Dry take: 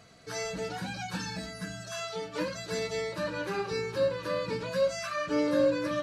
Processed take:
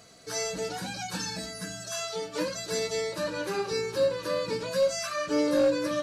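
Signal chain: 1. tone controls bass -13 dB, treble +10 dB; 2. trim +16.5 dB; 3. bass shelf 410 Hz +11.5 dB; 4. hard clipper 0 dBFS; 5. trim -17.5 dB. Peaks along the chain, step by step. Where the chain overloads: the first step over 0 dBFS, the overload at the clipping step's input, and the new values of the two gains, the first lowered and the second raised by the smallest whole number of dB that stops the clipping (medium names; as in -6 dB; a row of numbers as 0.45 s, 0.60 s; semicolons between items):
-17.0 dBFS, -0.5 dBFS, +4.0 dBFS, 0.0 dBFS, -17.5 dBFS; step 3, 4.0 dB; step 2 +12.5 dB, step 5 -13.5 dB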